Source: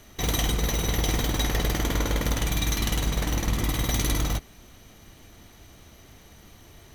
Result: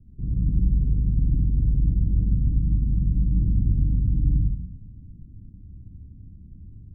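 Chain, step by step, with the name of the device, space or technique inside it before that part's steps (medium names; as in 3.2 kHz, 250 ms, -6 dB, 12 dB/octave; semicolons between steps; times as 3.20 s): club heard from the street (peak limiter -19 dBFS, peak gain reduction 8.5 dB; low-pass 210 Hz 24 dB/octave; reverberation RT60 0.80 s, pre-delay 54 ms, DRR -2 dB); trim +3.5 dB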